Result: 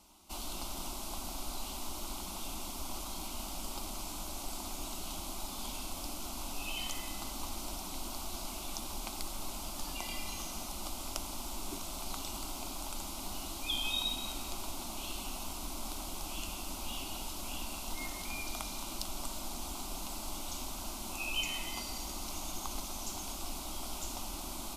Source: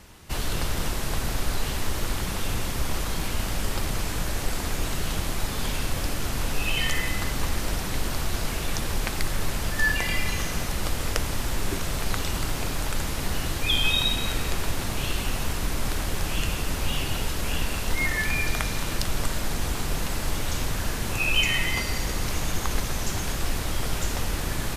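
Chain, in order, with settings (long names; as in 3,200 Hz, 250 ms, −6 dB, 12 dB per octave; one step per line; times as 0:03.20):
low-shelf EQ 200 Hz −8.5 dB
phaser with its sweep stopped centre 470 Hz, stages 6
level −7 dB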